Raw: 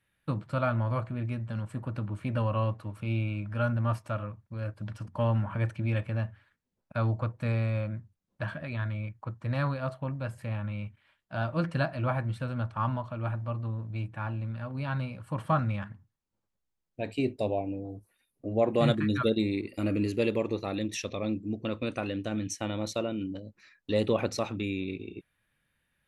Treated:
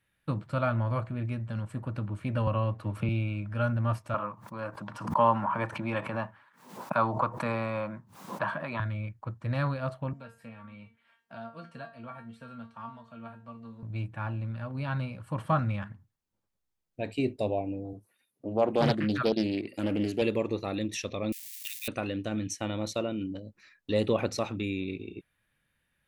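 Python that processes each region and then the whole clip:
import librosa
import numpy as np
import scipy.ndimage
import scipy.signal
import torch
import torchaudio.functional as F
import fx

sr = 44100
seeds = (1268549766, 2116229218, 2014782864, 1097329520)

y = fx.chain(x, sr, fx.high_shelf(hz=4400.0, db=-5.0),
    fx.band_squash(depth_pct=100), at=(2.47, 3.09))
y = fx.chain(y, sr, fx.highpass(hz=150.0, slope=24),
    fx.peak_eq(hz=990.0, db=15.0, octaves=0.88),
    fx.pre_swell(db_per_s=93.0), at=(4.14, 8.8))
y = fx.chain(y, sr, fx.highpass(hz=170.0, slope=6),
    fx.comb_fb(f0_hz=230.0, decay_s=0.24, harmonics='all', damping=0.0, mix_pct=90),
    fx.band_squash(depth_pct=70), at=(10.13, 13.83))
y = fx.chain(y, sr, fx.highpass(hz=120.0, slope=12),
    fx.doppler_dist(depth_ms=0.47), at=(17.93, 20.22))
y = fx.chain(y, sr, fx.crossing_spikes(level_db=-31.5),
    fx.steep_highpass(hz=1800.0, slope=72),
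    fx.high_shelf(hz=5700.0, db=9.5), at=(21.32, 21.88))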